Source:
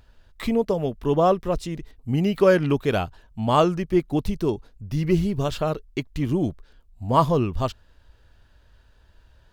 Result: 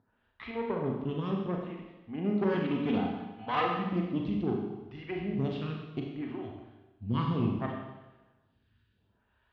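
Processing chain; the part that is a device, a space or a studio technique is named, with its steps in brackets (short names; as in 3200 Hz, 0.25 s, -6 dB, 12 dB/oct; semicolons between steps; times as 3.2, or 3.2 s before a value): 2.54–4.18 comb 4 ms, depth 90%; vibe pedal into a guitar amplifier (photocell phaser 0.66 Hz; tube stage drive 20 dB, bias 0.75; speaker cabinet 96–3400 Hz, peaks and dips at 110 Hz +5 dB, 230 Hz +5 dB, 560 Hz -8 dB); Schroeder reverb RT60 1.1 s, combs from 30 ms, DRR 0 dB; gain -4 dB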